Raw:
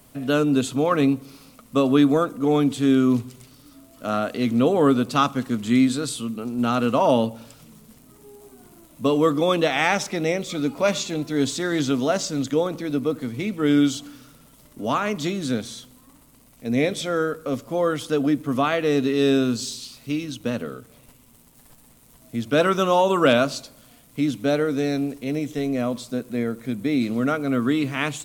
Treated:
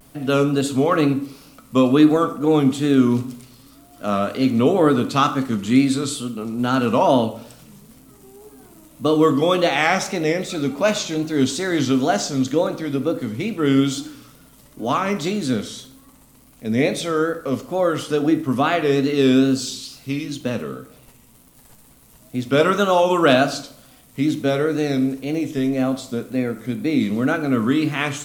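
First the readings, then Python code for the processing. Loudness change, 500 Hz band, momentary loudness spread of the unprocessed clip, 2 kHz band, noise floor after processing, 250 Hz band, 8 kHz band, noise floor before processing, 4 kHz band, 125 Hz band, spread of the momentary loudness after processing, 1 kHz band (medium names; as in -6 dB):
+2.5 dB, +2.5 dB, 10 LU, +3.0 dB, -50 dBFS, +2.5 dB, +2.5 dB, -53 dBFS, +2.5 dB, +3.5 dB, 11 LU, +3.0 dB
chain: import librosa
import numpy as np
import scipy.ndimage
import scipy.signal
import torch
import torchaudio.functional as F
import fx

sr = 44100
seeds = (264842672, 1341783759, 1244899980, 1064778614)

y = fx.wow_flutter(x, sr, seeds[0], rate_hz=2.1, depth_cents=110.0)
y = fx.rev_plate(y, sr, seeds[1], rt60_s=0.56, hf_ratio=0.8, predelay_ms=0, drr_db=8.0)
y = y * 10.0 ** (2.0 / 20.0)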